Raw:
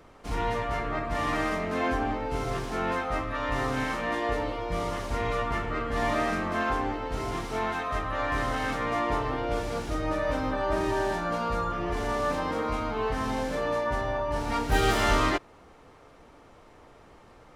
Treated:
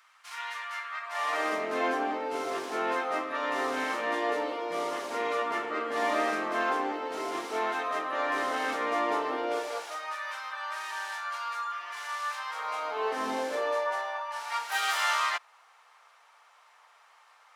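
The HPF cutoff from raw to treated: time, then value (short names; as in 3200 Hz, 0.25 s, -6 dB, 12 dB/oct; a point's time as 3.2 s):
HPF 24 dB/oct
1 s 1200 Hz
1.54 s 300 Hz
9.47 s 300 Hz
10.18 s 1100 Hz
12.46 s 1100 Hz
13.29 s 260 Hz
14.27 s 900 Hz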